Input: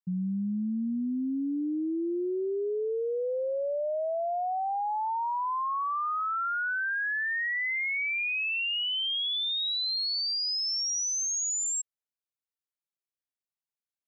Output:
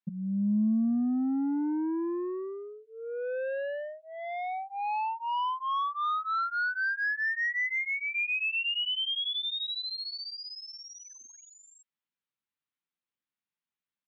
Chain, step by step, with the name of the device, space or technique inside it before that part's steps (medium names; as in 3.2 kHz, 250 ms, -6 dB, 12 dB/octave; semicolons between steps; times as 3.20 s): 7.64–8.14 s: low-pass 2.8 kHz -> 1.6 kHz; barber-pole flanger into a guitar amplifier (endless flanger 11.2 ms +1.2 Hz; saturation -33 dBFS, distortion -14 dB; cabinet simulation 110–3600 Hz, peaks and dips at 210 Hz +6 dB, 410 Hz -7 dB, 650 Hz -10 dB); trim +7 dB